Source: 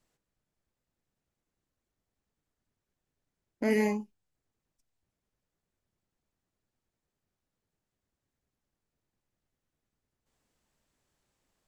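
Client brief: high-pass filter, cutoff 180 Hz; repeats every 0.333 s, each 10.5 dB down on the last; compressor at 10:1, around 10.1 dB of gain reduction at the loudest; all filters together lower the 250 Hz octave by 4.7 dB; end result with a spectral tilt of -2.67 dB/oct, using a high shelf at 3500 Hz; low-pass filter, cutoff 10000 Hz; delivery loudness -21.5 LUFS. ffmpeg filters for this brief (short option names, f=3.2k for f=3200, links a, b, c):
-af "highpass=180,lowpass=10k,equalizer=f=250:t=o:g=-3.5,highshelf=f=3.5k:g=-8,acompressor=threshold=-35dB:ratio=10,aecho=1:1:333|666|999:0.299|0.0896|0.0269,volume=22dB"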